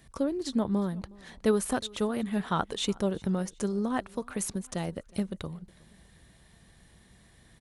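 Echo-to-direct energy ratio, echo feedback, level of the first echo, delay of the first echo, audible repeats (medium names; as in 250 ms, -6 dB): -23.5 dB, 38%, -24.0 dB, 365 ms, 2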